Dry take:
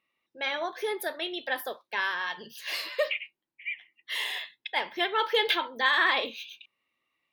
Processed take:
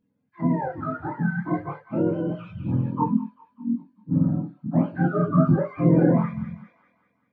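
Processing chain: spectrum inverted on a logarithmic axis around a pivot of 740 Hz; chorus voices 4, 0.29 Hz, delay 26 ms, depth 3 ms; feedback echo behind a high-pass 197 ms, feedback 50%, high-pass 2.3 kHz, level -4.5 dB; trim +8 dB

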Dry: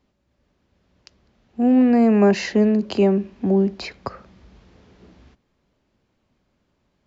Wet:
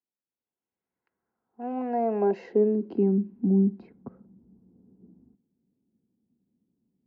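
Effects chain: level-controlled noise filter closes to 670 Hz, open at -16.5 dBFS; comb of notches 600 Hz; band-pass sweep 5 kHz -> 220 Hz, 0.07–3.22 s

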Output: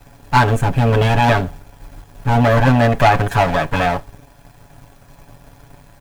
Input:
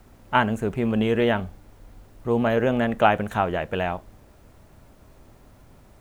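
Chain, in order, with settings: comb filter that takes the minimum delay 1.2 ms; comb 7.1 ms, depth 99%; in parallel at +1.5 dB: peak limiter -14 dBFS, peak gain reduction 10.5 dB; on the sum: waveshaping leveller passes 1; trim -1 dB

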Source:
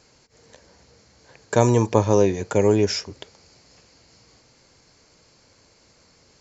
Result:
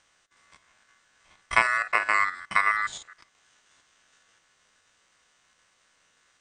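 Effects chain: spectrogram pixelated in time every 50 ms; transient shaper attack +7 dB, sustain -5 dB; ring modulator 1.6 kHz; trim -5 dB

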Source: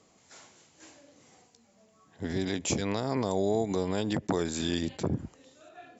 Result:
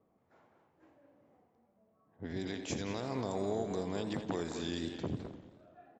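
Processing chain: speakerphone echo 210 ms, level -6 dB; level-controlled noise filter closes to 1 kHz, open at -23.5 dBFS; modulated delay 86 ms, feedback 65%, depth 173 cents, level -12.5 dB; trim -8 dB

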